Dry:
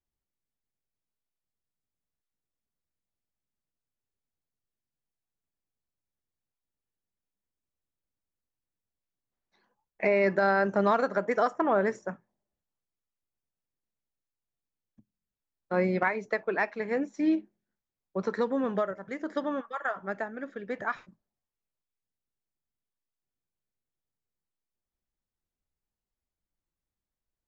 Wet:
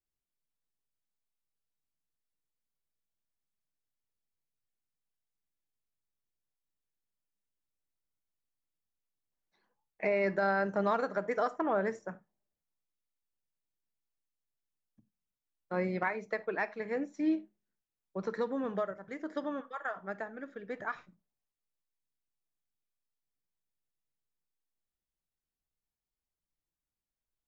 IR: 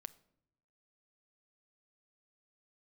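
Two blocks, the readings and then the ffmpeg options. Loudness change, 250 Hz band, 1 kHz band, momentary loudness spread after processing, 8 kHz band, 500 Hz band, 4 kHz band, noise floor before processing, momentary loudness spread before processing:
−5.5 dB, −5.0 dB, −5.5 dB, 12 LU, can't be measured, −5.5 dB, −5.5 dB, below −85 dBFS, 12 LU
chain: -filter_complex "[1:a]atrim=start_sample=2205,atrim=end_sample=4410[link_01];[0:a][link_01]afir=irnorm=-1:irlink=0"

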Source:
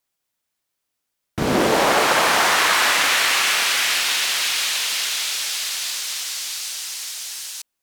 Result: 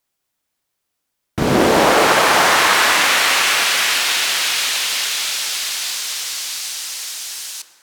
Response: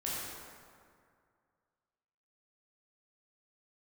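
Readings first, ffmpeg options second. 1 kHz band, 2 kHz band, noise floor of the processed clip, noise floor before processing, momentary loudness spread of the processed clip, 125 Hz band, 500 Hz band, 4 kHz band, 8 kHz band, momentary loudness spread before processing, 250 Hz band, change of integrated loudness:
+4.0 dB, +3.5 dB, −76 dBFS, −79 dBFS, 13 LU, +5.5 dB, +5.0 dB, +3.0 dB, +2.5 dB, 12 LU, +5.0 dB, +3.5 dB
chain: -filter_complex "[0:a]asplit=2[link_01][link_02];[1:a]atrim=start_sample=2205,highshelf=frequency=2100:gain=-11.5[link_03];[link_02][link_03]afir=irnorm=-1:irlink=0,volume=-7.5dB[link_04];[link_01][link_04]amix=inputs=2:normalize=0,volume=2dB"

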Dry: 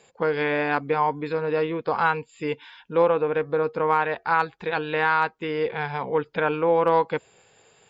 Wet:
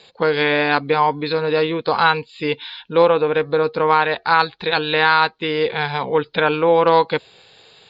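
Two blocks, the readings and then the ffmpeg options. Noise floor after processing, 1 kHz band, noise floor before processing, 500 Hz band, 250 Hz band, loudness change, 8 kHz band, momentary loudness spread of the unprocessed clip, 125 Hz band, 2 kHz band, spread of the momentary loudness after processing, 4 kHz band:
−51 dBFS, +6.0 dB, −59 dBFS, +5.5 dB, +5.5 dB, +6.0 dB, can't be measured, 8 LU, +5.5 dB, +7.0 dB, 7 LU, +16.0 dB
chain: -af "lowpass=frequency=4100:width_type=q:width=7.2,volume=5.5dB"

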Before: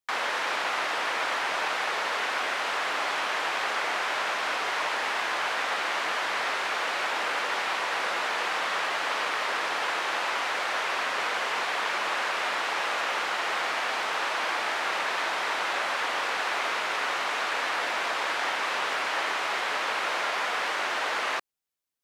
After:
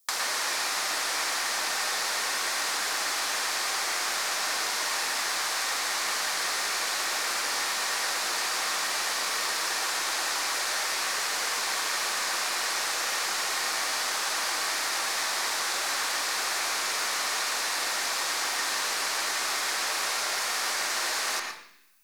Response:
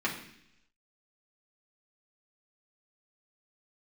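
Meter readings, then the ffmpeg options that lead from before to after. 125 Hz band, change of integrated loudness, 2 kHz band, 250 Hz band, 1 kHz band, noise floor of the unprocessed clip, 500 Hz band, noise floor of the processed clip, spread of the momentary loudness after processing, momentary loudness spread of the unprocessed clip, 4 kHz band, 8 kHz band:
can't be measured, +0.5 dB, −2.0 dB, −3.0 dB, −4.0 dB, −30 dBFS, −5.5 dB, −30 dBFS, 0 LU, 0 LU, +3.5 dB, +13.0 dB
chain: -filter_complex "[0:a]aeval=exprs='0.188*(cos(1*acos(clip(val(0)/0.188,-1,1)))-cos(1*PI/2))+0.0119*(cos(2*acos(clip(val(0)/0.188,-1,1)))-cos(2*PI/2))':channel_layout=same,aexciter=amount=3.3:drive=7.7:freq=4200,acrossover=split=1700|5200[link_01][link_02][link_03];[link_01]acompressor=threshold=-46dB:ratio=4[link_04];[link_02]acompressor=threshold=-44dB:ratio=4[link_05];[link_03]acompressor=threshold=-41dB:ratio=4[link_06];[link_04][link_05][link_06]amix=inputs=3:normalize=0,asplit=2[link_07][link_08];[1:a]atrim=start_sample=2205,adelay=110[link_09];[link_08][link_09]afir=irnorm=-1:irlink=0,volume=-9.5dB[link_10];[link_07][link_10]amix=inputs=2:normalize=0,volume=7dB"

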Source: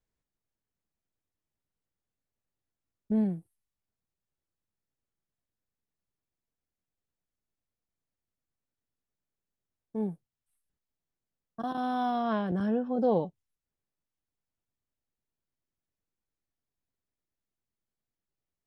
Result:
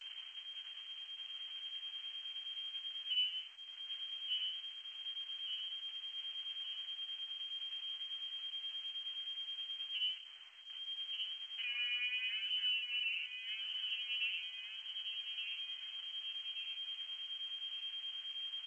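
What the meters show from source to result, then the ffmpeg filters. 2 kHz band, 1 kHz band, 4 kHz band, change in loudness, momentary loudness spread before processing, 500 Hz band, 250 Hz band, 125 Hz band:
+7.5 dB, below −25 dB, +23.5 dB, −9.0 dB, 13 LU, below −40 dB, below −40 dB, below −40 dB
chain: -filter_complex "[0:a]aeval=exprs='val(0)+0.5*0.0188*sgn(val(0))':channel_layout=same,lowpass=frequency=2700:width_type=q:width=0.5098,lowpass=frequency=2700:width_type=q:width=0.6013,lowpass=frequency=2700:width_type=q:width=0.9,lowpass=frequency=2700:width_type=q:width=2.563,afreqshift=-3200,equalizer=frequency=160:width_type=o:width=0.61:gain=-9,asplit=2[link_01][link_02];[link_02]aecho=0:1:1175|2350|3525|4700|5875:0.355|0.167|0.0784|0.0368|0.0173[link_03];[link_01][link_03]amix=inputs=2:normalize=0,acompressor=mode=upward:threshold=-49dB:ratio=2.5,alimiter=limit=-23.5dB:level=0:latency=1:release=479,aderivative,agate=range=-18dB:threshold=-58dB:ratio=16:detection=peak,flanger=delay=7.3:depth=7.8:regen=-22:speed=0.19:shape=triangular,volume=5dB" -ar 16000 -c:a g722

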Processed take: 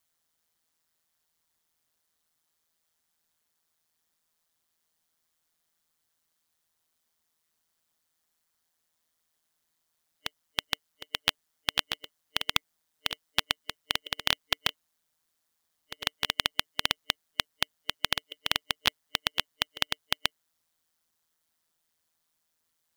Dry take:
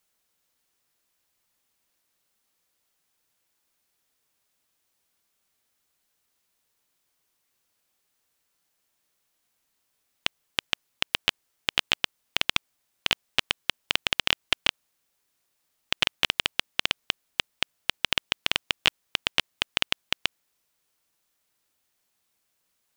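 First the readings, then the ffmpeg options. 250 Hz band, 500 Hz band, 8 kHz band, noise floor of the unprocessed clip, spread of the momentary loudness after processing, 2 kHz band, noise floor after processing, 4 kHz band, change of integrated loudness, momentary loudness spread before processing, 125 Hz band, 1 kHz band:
−2.5 dB, −3.0 dB, −1.0 dB, −76 dBFS, 7 LU, −4.5 dB, −79 dBFS, −3.0 dB, −3.0 dB, 8 LU, −2.0 dB, −1.5 dB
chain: -af "superequalizer=7b=0.355:12b=0.631,acrusher=bits=3:mode=log:mix=0:aa=0.000001,aeval=exprs='val(0)*sin(2*PI*81*n/s)':channel_layout=same"

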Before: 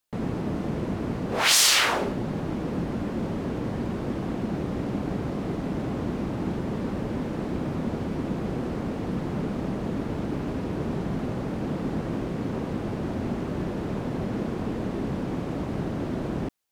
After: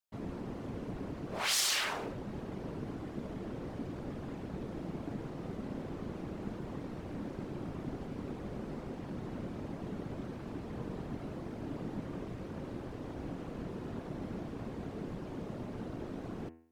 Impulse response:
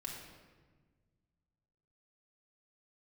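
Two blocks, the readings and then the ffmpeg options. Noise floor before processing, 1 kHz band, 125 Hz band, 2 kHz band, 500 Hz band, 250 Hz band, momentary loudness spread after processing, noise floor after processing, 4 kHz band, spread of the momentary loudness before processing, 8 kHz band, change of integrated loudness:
−32 dBFS, −12.0 dB, −12.0 dB, −12.0 dB, −11.5 dB, −12.0 dB, 3 LU, −44 dBFS, −11.5 dB, 3 LU, −12.0 dB, −12.0 dB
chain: -af "afftfilt=real='hypot(re,im)*cos(2*PI*random(0))':imag='hypot(re,im)*sin(2*PI*random(1))':win_size=512:overlap=0.75,bandreject=frequency=82.04:width_type=h:width=4,bandreject=frequency=164.08:width_type=h:width=4,bandreject=frequency=246.12:width_type=h:width=4,bandreject=frequency=328.16:width_type=h:width=4,bandreject=frequency=410.2:width_type=h:width=4,bandreject=frequency=492.24:width_type=h:width=4,bandreject=frequency=574.28:width_type=h:width=4,bandreject=frequency=656.32:width_type=h:width=4,bandreject=frequency=738.36:width_type=h:width=4,bandreject=frequency=820.4:width_type=h:width=4,bandreject=frequency=902.44:width_type=h:width=4,bandreject=frequency=984.48:width_type=h:width=4,bandreject=frequency=1066.52:width_type=h:width=4,bandreject=frequency=1148.56:width_type=h:width=4,bandreject=frequency=1230.6:width_type=h:width=4,bandreject=frequency=1312.64:width_type=h:width=4,bandreject=frequency=1394.68:width_type=h:width=4,bandreject=frequency=1476.72:width_type=h:width=4,bandreject=frequency=1558.76:width_type=h:width=4,bandreject=frequency=1640.8:width_type=h:width=4,bandreject=frequency=1722.84:width_type=h:width=4,bandreject=frequency=1804.88:width_type=h:width=4,bandreject=frequency=1886.92:width_type=h:width=4,bandreject=frequency=1968.96:width_type=h:width=4,bandreject=frequency=2051:width_type=h:width=4,bandreject=frequency=2133.04:width_type=h:width=4,bandreject=frequency=2215.08:width_type=h:width=4,bandreject=frequency=2297.12:width_type=h:width=4,bandreject=frequency=2379.16:width_type=h:width=4,bandreject=frequency=2461.2:width_type=h:width=4,bandreject=frequency=2543.24:width_type=h:width=4,bandreject=frequency=2625.28:width_type=h:width=4,bandreject=frequency=2707.32:width_type=h:width=4,bandreject=frequency=2789.36:width_type=h:width=4,bandreject=frequency=2871.4:width_type=h:width=4,bandreject=frequency=2953.44:width_type=h:width=4,volume=-5.5dB"

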